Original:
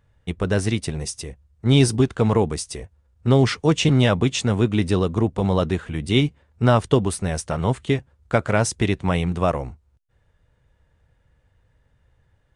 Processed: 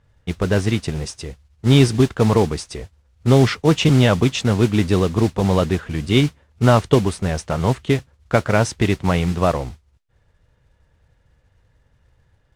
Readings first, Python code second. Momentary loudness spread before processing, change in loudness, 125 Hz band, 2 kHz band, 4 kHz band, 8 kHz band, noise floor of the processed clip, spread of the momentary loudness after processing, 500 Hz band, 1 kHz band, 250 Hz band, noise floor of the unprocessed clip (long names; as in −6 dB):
12 LU, +3.0 dB, +3.0 dB, +2.5 dB, +2.0 dB, −1.0 dB, −61 dBFS, 13 LU, +3.0 dB, +3.0 dB, +3.0 dB, −64 dBFS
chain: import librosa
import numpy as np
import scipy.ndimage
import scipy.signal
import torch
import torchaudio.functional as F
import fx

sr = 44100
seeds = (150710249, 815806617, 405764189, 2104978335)

y = fx.mod_noise(x, sr, seeds[0], snr_db=15)
y = fx.air_absorb(y, sr, metres=70.0)
y = F.gain(torch.from_numpy(y), 3.0).numpy()